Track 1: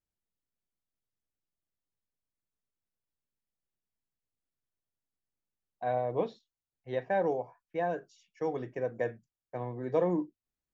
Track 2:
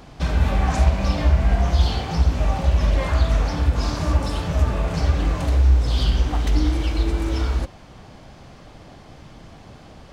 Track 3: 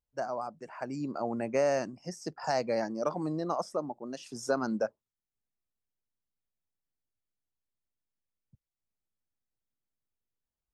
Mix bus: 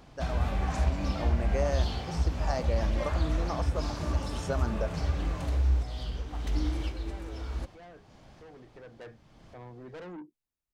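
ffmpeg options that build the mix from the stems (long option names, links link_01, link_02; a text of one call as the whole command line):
ffmpeg -i stem1.wav -i stem2.wav -i stem3.wav -filter_complex "[0:a]asoftclip=type=tanh:threshold=-34.5dB,equalizer=frequency=540:width=3.7:gain=-3,volume=-5dB,afade=type=in:start_time=8.56:duration=0.59:silence=0.473151,asplit=2[link_01][link_02];[1:a]volume=-10dB[link_03];[2:a]volume=-4dB[link_04];[link_02]apad=whole_len=446354[link_05];[link_03][link_05]sidechaincompress=threshold=-55dB:ratio=6:attack=20:release=505[link_06];[link_01][link_06][link_04]amix=inputs=3:normalize=0" out.wav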